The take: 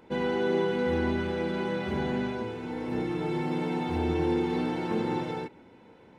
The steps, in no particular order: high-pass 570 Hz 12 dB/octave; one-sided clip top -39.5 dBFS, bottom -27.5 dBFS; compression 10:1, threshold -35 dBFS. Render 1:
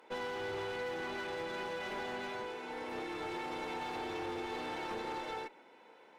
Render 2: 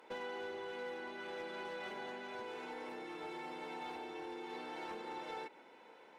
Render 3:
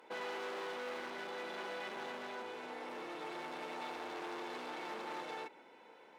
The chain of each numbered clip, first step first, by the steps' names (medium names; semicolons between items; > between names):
high-pass > one-sided clip > compression; compression > high-pass > one-sided clip; one-sided clip > compression > high-pass